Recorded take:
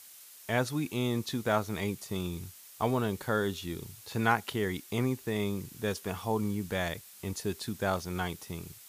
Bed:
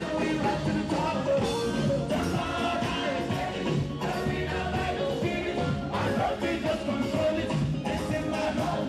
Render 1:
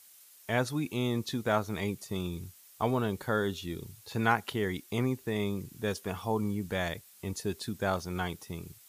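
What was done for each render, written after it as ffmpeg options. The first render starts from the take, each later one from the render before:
-af "afftdn=nr=6:nf=-52"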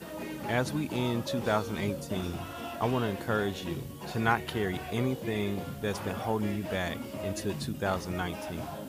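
-filter_complex "[1:a]volume=-11dB[a];[0:a][a]amix=inputs=2:normalize=0"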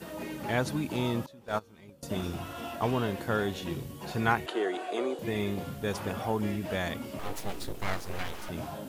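-filter_complex "[0:a]asettb=1/sr,asplit=3[a][b][c];[a]atrim=end=1.264[d];[b]atrim=start=1.26:end=2.03,asetpts=PTS-STARTPTS,afade=t=in:d=0.004:c=qsin,afade=t=out:st=0.766:d=0.004:c=qsin,agate=range=-21dB:threshold=-26dB:ratio=16:release=100:detection=peak[e];[c]atrim=start=2.026[f];[d][e]acrossfade=d=0.004:c1=hsin:c2=qsin[g];[g][f]acrossfade=d=0.004:c1=qsin:c2=hsin,asettb=1/sr,asplit=3[h][i][j];[h]atrim=end=4.464[k];[i]atrim=start=4.46:end=5.19,asetpts=PTS-STARTPTS,afade=t=in:d=0.004:c=qsin,afade=t=out:st=0.726:d=0.004:c=qsin,highpass=f=320:w=0.5412,highpass=f=320:w=1.3066,equalizer=f=340:t=q:w=4:g=7,equalizer=f=670:t=q:w=4:g=7,equalizer=f=1.3k:t=q:w=4:g=4,equalizer=f=2.1k:t=q:w=4:g=-4,equalizer=f=5.4k:t=q:w=4:g=-7,lowpass=f=9.3k:w=0.5412,lowpass=f=9.3k:w=1.3066[l];[j]atrim=start=5.186[m];[k][l]acrossfade=d=0.004:c1=hsin:c2=qsin[n];[n][m]acrossfade=d=0.004:c1=qsin:c2=hsin,asettb=1/sr,asplit=3[o][p][q];[o]atrim=end=7.194[r];[p]atrim=start=7.19:end=8.49,asetpts=PTS-STARTPTS,afade=t=in:d=0.004:c=qsin,afade=t=out:st=1.296:d=0.004:c=qsin,aeval=exprs='abs(val(0))':c=same[s];[q]atrim=start=8.486[t];[r][s]acrossfade=d=0.004:c1=hsin:c2=qsin[u];[u][t]acrossfade=d=0.004:c1=qsin:c2=hsin"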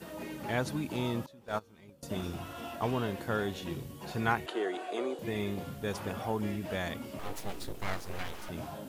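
-af "volume=-3dB"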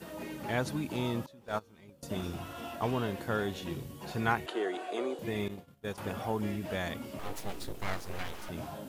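-filter_complex "[0:a]asettb=1/sr,asplit=3[a][b][c];[a]atrim=end=5.484[d];[b]atrim=start=5.48:end=5.98,asetpts=PTS-STARTPTS,afade=t=in:d=0.004:c=qsin,afade=t=out:st=0.496:d=0.004:c=qsin,agate=range=-33dB:threshold=-30dB:ratio=3:release=100:detection=peak[e];[c]atrim=start=5.976[f];[d][e]acrossfade=d=0.004:c1=hsin:c2=qsin[g];[g][f]acrossfade=d=0.004:c1=qsin:c2=hsin"

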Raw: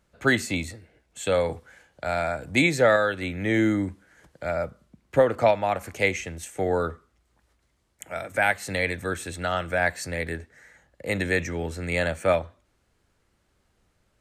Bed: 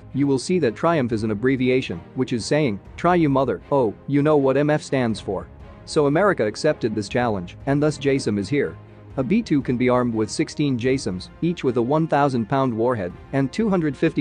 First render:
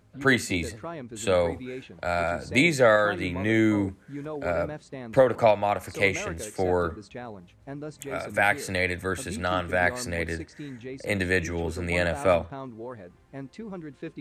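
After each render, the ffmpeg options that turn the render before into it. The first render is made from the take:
-filter_complex "[1:a]volume=-18dB[a];[0:a][a]amix=inputs=2:normalize=0"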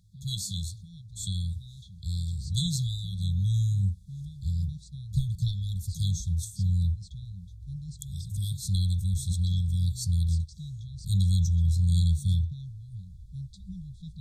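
-af "afftfilt=real='re*(1-between(b*sr/4096,200,3300))':imag='im*(1-between(b*sr/4096,200,3300))':win_size=4096:overlap=0.75,asubboost=boost=11:cutoff=78"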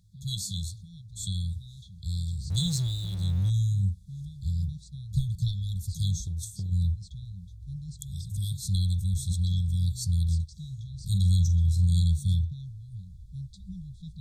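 -filter_complex "[0:a]asettb=1/sr,asplit=3[a][b][c];[a]atrim=end=2.504[d];[b]atrim=start=2.5:end=3.5,asetpts=PTS-STARTPTS,afade=t=in:d=0.004:c=qsin,afade=t=out:st=0.996:d=0.004:c=qsin,aeval=exprs='val(0)+0.5*0.01*sgn(val(0))':c=same[e];[c]atrim=start=3.496[f];[d][e]acrossfade=d=0.004:c1=hsin:c2=qsin[g];[g][f]acrossfade=d=0.004:c1=qsin:c2=hsin,asplit=3[h][i][j];[h]afade=t=out:st=6.2:d=0.02[k];[i]acompressor=threshold=-29dB:ratio=6:attack=3.2:release=140:knee=1:detection=peak,afade=t=in:st=6.2:d=0.02,afade=t=out:st=6.71:d=0.02[l];[j]afade=t=in:st=6.71:d=0.02[m];[k][l][m]amix=inputs=3:normalize=0,asettb=1/sr,asplit=3[n][o][p];[n]atrim=end=10.594[q];[o]atrim=start=10.59:end=11.87,asetpts=PTS-STARTPTS,afade=t=in:d=0.004:c=qsin,afade=t=out:st=1.276:d=0.004:c=qsin,asplit=2[r][s];[s]adelay=45,volume=-11dB[t];[r][t]amix=inputs=2:normalize=0,atrim=end_sample=56448[u];[p]atrim=start=11.866[v];[q][u]acrossfade=d=0.004:c1=hsin:c2=qsin[w];[w][v]acrossfade=d=0.004:c1=qsin:c2=hsin"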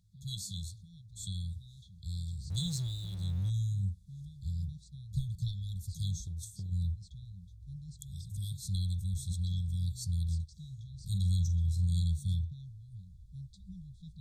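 -af "volume=-7dB"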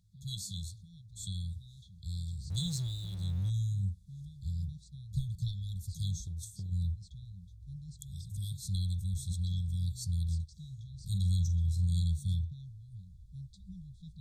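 -af anull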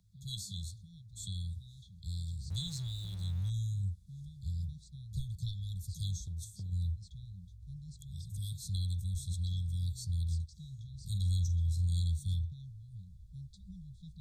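-filter_complex "[0:a]acrossover=split=120|770|4400[a][b][c][d];[b]acompressor=threshold=-48dB:ratio=6[e];[d]alimiter=level_in=12.5dB:limit=-24dB:level=0:latency=1:release=278,volume=-12.5dB[f];[a][e][c][f]amix=inputs=4:normalize=0"

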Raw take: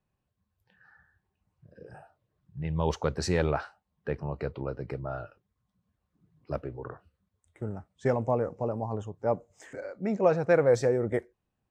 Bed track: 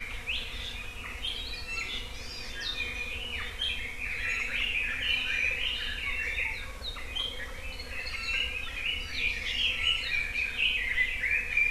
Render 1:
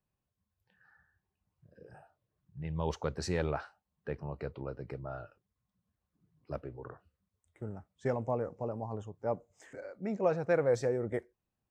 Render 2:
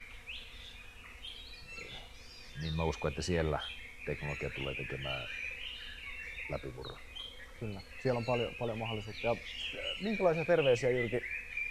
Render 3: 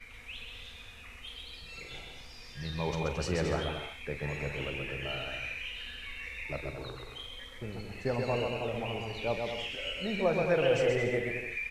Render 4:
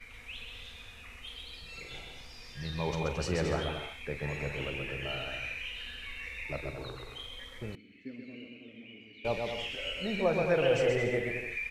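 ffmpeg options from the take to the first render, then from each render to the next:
-af "volume=-6dB"
-filter_complex "[1:a]volume=-12dB[a];[0:a][a]amix=inputs=2:normalize=0"
-filter_complex "[0:a]asplit=2[a][b];[b]adelay=42,volume=-12.5dB[c];[a][c]amix=inputs=2:normalize=0,aecho=1:1:130|221|284.7|329.3|360.5:0.631|0.398|0.251|0.158|0.1"
-filter_complex "[0:a]asettb=1/sr,asplit=3[a][b][c];[a]atrim=end=7.754[d];[b]atrim=start=7.75:end=9.25,asetpts=PTS-STARTPTS,afade=t=in:d=0.004:c=qsin,afade=t=out:st=1.496:d=0.004:c=qsin,asplit=3[e][f][g];[e]bandpass=f=270:t=q:w=8,volume=0dB[h];[f]bandpass=f=2.29k:t=q:w=8,volume=-6dB[i];[g]bandpass=f=3.01k:t=q:w=8,volume=-9dB[j];[h][i][j]amix=inputs=3:normalize=0[k];[c]atrim=start=9.246[l];[d][k]acrossfade=d=0.004:c1=hsin:c2=qsin[m];[m][l]acrossfade=d=0.004:c1=qsin:c2=hsin"

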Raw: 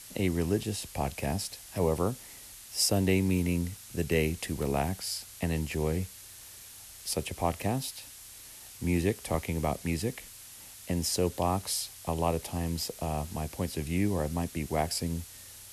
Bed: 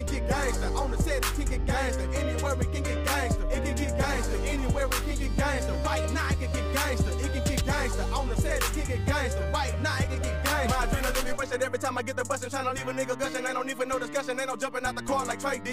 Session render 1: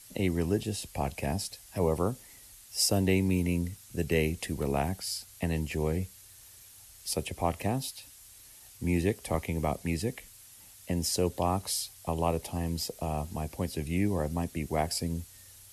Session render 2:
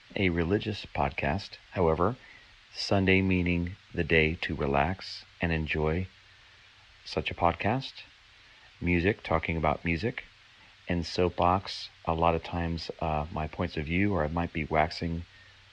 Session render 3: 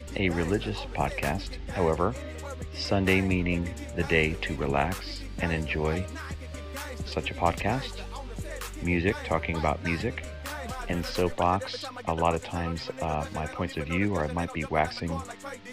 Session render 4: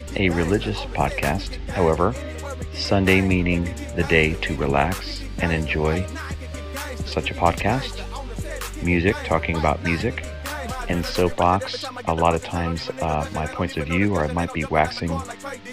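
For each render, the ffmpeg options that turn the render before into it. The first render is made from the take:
-af "afftdn=nr=7:nf=-49"
-af "lowpass=f=4.1k:w=0.5412,lowpass=f=4.1k:w=1.3066,equalizer=f=1.8k:w=0.53:g=10"
-filter_complex "[1:a]volume=-10dB[a];[0:a][a]amix=inputs=2:normalize=0"
-af "volume=6.5dB"

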